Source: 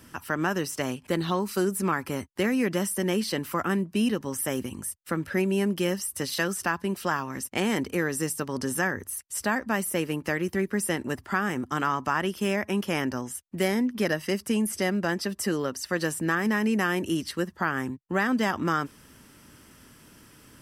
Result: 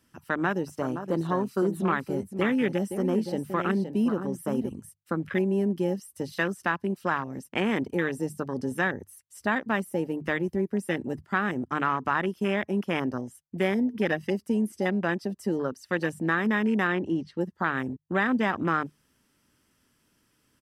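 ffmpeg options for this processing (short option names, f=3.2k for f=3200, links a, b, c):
-filter_complex "[0:a]asplit=3[a][b][c];[a]afade=t=out:st=0.66:d=0.02[d];[b]aecho=1:1:519:0.398,afade=t=in:st=0.66:d=0.02,afade=t=out:st=4.73:d=0.02[e];[c]afade=t=in:st=4.73:d=0.02[f];[d][e][f]amix=inputs=3:normalize=0,asettb=1/sr,asplit=3[g][h][i];[g]atrim=end=16.874[j];[h]atrim=start=16.87:end=17.41,asetpts=PTS-STARTPTS,afade=t=in:d=0.004:c=qsin,afade=t=out:st=0.536:d=0.004:c=qsin,lowpass=4.4k[k];[i]atrim=start=17.406[l];[j][k]acrossfade=d=0.004:c1=hsin:c2=qsin[m];[m][l]acrossfade=d=0.004:c1=qsin:c2=hsin,bandreject=f=50:t=h:w=6,bandreject=f=100:t=h:w=6,bandreject=f=150:t=h:w=6,afwtdn=0.0282,equalizer=f=4.1k:t=o:w=1.8:g=2.5"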